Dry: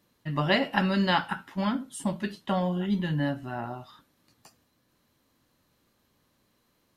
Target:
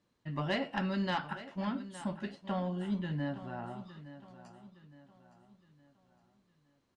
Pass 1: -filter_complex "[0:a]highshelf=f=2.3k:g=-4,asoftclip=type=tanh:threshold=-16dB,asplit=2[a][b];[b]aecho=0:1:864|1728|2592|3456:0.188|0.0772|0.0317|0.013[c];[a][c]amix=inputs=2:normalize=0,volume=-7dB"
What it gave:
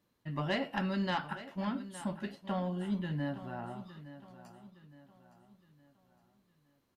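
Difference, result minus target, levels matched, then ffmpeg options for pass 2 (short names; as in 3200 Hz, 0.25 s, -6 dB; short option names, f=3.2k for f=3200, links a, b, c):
8000 Hz band +2.5 dB
-filter_complex "[0:a]lowpass=f=8.6k:w=0.5412,lowpass=f=8.6k:w=1.3066,highshelf=f=2.3k:g=-4,asoftclip=type=tanh:threshold=-16dB,asplit=2[a][b];[b]aecho=0:1:864|1728|2592|3456:0.188|0.0772|0.0317|0.013[c];[a][c]amix=inputs=2:normalize=0,volume=-7dB"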